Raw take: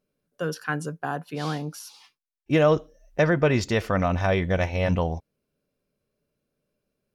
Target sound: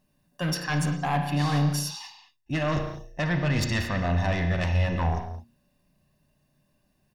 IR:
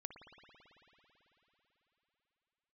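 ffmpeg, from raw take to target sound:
-filter_complex "[0:a]aecho=1:1:1.1:0.85,bandreject=f=117.4:t=h:w=4,bandreject=f=234.8:t=h:w=4,bandreject=f=352.2:t=h:w=4,bandreject=f=469.6:t=h:w=4,areverse,acompressor=threshold=-27dB:ratio=20,areverse,aeval=exprs='0.106*sin(PI/2*2*val(0)/0.106)':c=same[a];[1:a]atrim=start_sample=2205,afade=t=out:st=0.43:d=0.01,atrim=end_sample=19404,asetrate=70560,aresample=44100[b];[a][b]afir=irnorm=-1:irlink=0,volume=7.5dB"

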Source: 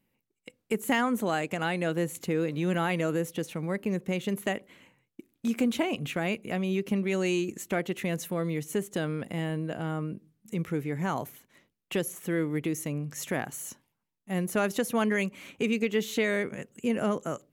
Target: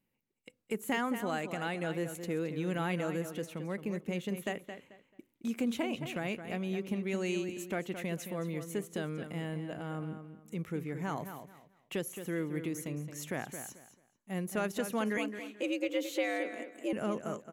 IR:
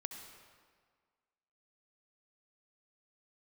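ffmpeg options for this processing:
-filter_complex "[0:a]asettb=1/sr,asplit=3[a][b][c];[a]atrim=end=15.174[d];[b]atrim=start=15.17:end=16.93,asetpts=PTS-STARTPTS,afade=t=in:d=0.004:c=qsin,afade=t=out:st=1.756:d=0.004:c=qsin,afreqshift=94[e];[c]atrim=start=16.926[f];[d][e]acrossfade=d=0.004:c1=hsin:c2=qsin[g];[g][f]acrossfade=d=0.004:c1=qsin:c2=hsin,asplit=2[h][i];[i]adelay=219,lowpass=f=4.6k:p=1,volume=-9dB,asplit=2[j][k];[k]adelay=219,lowpass=f=4.6k:p=1,volume=0.25,asplit=2[l][m];[m]adelay=219,lowpass=f=4.6k:p=1,volume=0.25[n];[h][j][l][n]amix=inputs=4:normalize=0,volume=-6.5dB"

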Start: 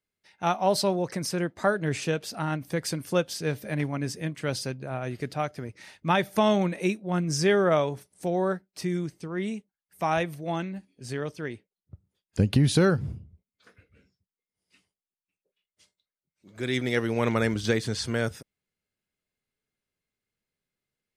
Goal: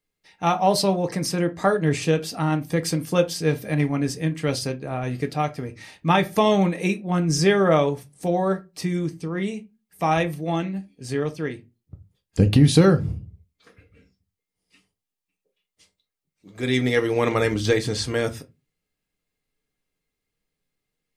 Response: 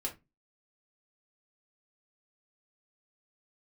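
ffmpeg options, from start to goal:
-filter_complex "[0:a]lowshelf=f=99:g=6.5,bandreject=f=1.5k:w=11,asplit=2[a][b];[1:a]atrim=start_sample=2205[c];[b][c]afir=irnorm=-1:irlink=0,volume=-2dB[d];[a][d]amix=inputs=2:normalize=0"

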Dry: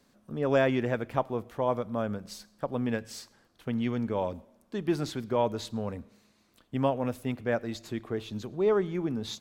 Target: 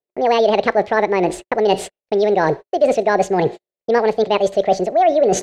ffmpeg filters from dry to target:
-filter_complex "[0:a]lowshelf=f=480:t=q:w=3:g=7.5,asplit=2[a][b];[b]alimiter=limit=-14dB:level=0:latency=1,volume=3dB[c];[a][c]amix=inputs=2:normalize=0,lowpass=f=5.2k:w=0.5412,lowpass=f=5.2k:w=1.3066,agate=range=-51dB:threshold=-39dB:ratio=16:detection=peak,asetrate=76440,aresample=44100,areverse,acompressor=threshold=-24dB:ratio=6,areverse,equalizer=f=125:t=o:w=1:g=4,equalizer=f=500:t=o:w=1:g=7,equalizer=f=1k:t=o:w=1:g=5,equalizer=f=2k:t=o:w=1:g=11,equalizer=f=4k:t=o:w=1:g=10,volume=4dB"

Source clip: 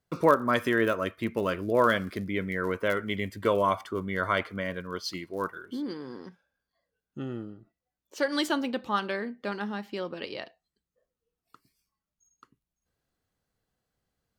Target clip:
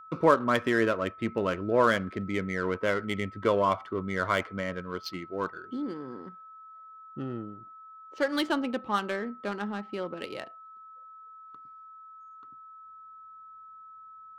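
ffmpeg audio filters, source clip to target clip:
-af "adynamicequalizer=threshold=0.00282:dfrequency=7800:dqfactor=0.73:tfrequency=7800:tqfactor=0.73:attack=5:release=100:ratio=0.375:range=2:mode=cutabove:tftype=bell,adynamicsmooth=sensitivity=5:basefreq=2k,aeval=exprs='val(0)+0.00501*sin(2*PI*1300*n/s)':c=same"

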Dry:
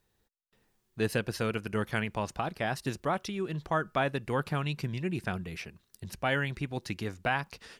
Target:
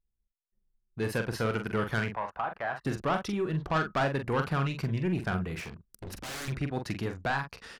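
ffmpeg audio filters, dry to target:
-filter_complex "[0:a]asplit=2[a][b];[b]acompressor=threshold=-43dB:ratio=6,volume=1dB[c];[a][c]amix=inputs=2:normalize=0,adynamicequalizer=threshold=0.00708:dfrequency=1400:dqfactor=1.4:tfrequency=1400:tqfactor=1.4:attack=5:release=100:ratio=0.375:range=2.5:mode=boostabove:tftype=bell,acrossover=split=1600[d][e];[d]dynaudnorm=f=470:g=5:m=6.5dB[f];[f][e]amix=inputs=2:normalize=0,asoftclip=type=tanh:threshold=-18dB,asettb=1/sr,asplit=3[g][h][i];[g]atrim=end=2.114[j];[h]atrim=start=2.11:end=2.84,asetpts=PTS-STARTPTS,afade=t=in:d=0.004:c=qsin,afade=t=out:st=0.726:d=0.004:c=qsin,acrossover=split=570 2600:gain=0.158 1 0.112[k][l][m];[k][l][m]amix=inputs=3:normalize=0[n];[i]atrim=start=2.836[o];[j][n]acrossfade=d=0.004:c1=hsin:c2=qsin[p];[p][o]acrossfade=d=0.004:c1=qsin:c2=hsin,asettb=1/sr,asplit=3[q][r][s];[q]atrim=end=5.564[t];[r]atrim=start=5.56:end=6.48,asetpts=PTS-STARTPTS,afade=t=in:d=0.004:c=qsin,afade=t=out:st=0.916:d=0.004:c=qsin,aeval=exprs='0.0316*(abs(mod(val(0)/0.0316+3,4)-2)-1)':c=same[u];[s]atrim=start=6.476[v];[t][u]acrossfade=d=0.004:c1=hsin:c2=qsin[w];[w][v]acrossfade=d=0.004:c1=qsin:c2=hsin,asplit=2[x][y];[y]adelay=44,volume=-7dB[z];[x][z]amix=inputs=2:normalize=0,anlmdn=0.0251,volume=-4.5dB"

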